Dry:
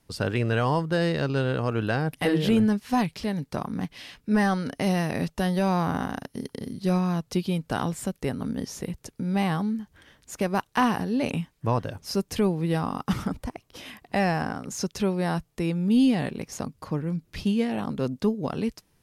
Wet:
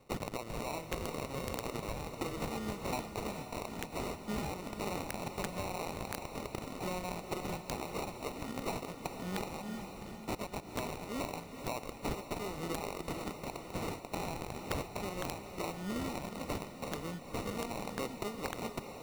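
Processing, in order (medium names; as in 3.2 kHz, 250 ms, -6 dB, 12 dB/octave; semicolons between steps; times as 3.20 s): frequency weighting ITU-R 468; compression 16:1, threshold -35 dBFS, peak gain reduction 18.5 dB; sample-and-hold 27×; echo that smears into a reverb 451 ms, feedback 51%, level -8 dB; integer overflow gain 25.5 dB; trim +1 dB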